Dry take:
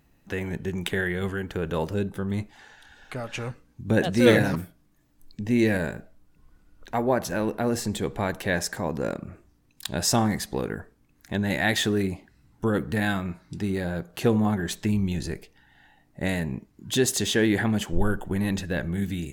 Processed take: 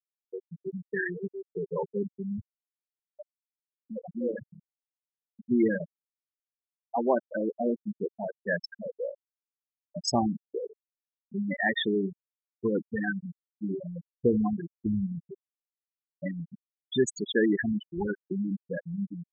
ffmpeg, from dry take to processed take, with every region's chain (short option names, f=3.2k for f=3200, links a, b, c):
-filter_complex "[0:a]asettb=1/sr,asplit=3[a][b][c];[a]atrim=end=3.254[d];[b]atrim=start=3.25:end=5.51,asetpts=PTS-STARTPTS,afade=t=in:d=0.004:c=qsin,afade=t=out:st=2.256:d=0.004:c=qsin,bandreject=f=50:t=h:w=6,bandreject=f=100:t=h:w=6,bandreject=f=150:t=h:w=6,bandreject=f=200:t=h:w=6,bandreject=f=250:t=h:w=6,bandreject=f=300:t=h:w=6,bandreject=f=350:t=h:w=6,bandreject=f=400:t=h:w=6,acompressor=threshold=-31dB:ratio=2:attack=3.2:release=140:knee=1:detection=peak[e];[c]atrim=start=5.506[f];[d][e]acrossfade=d=0.004:c1=hsin:c2=qsin[g];[g][f]acrossfade=d=0.004:c1=qsin:c2=hsin,highpass=f=200:p=1,afftfilt=real='re*gte(hypot(re,im),0.2)':imag='im*gte(hypot(re,im),0.2)':win_size=1024:overlap=0.75"